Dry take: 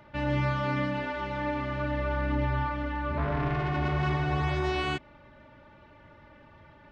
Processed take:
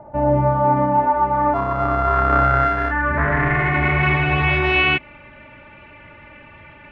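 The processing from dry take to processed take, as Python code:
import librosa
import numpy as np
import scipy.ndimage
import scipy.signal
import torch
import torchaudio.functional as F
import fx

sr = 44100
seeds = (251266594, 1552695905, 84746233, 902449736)

y = fx.sample_sort(x, sr, block=64, at=(1.53, 2.9), fade=0.02)
y = fx.filter_sweep_lowpass(y, sr, from_hz=750.0, to_hz=2500.0, start_s=0.38, end_s=4.32, q=5.2)
y = y * librosa.db_to_amplitude(8.0)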